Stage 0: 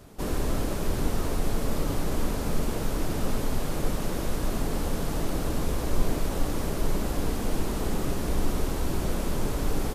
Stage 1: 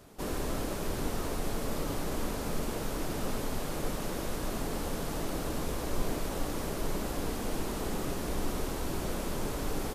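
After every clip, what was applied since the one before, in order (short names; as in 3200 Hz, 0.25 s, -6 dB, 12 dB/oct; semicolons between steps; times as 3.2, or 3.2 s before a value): low shelf 190 Hz -6.5 dB; gain -2.5 dB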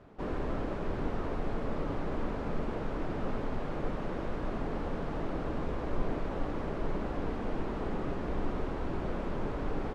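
LPF 2000 Hz 12 dB/oct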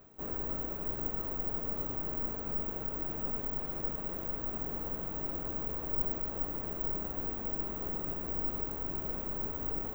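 reverse; upward compressor, threshold -38 dBFS; reverse; added noise pink -69 dBFS; careless resampling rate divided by 2×, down none, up zero stuff; gain -7 dB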